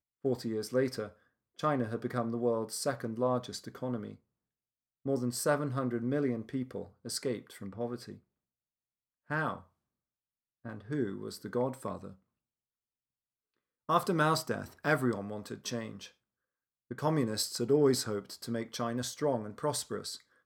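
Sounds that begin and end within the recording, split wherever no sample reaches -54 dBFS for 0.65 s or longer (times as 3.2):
5.05–8.19
9.3–9.64
10.65–12.16
13.89–16.11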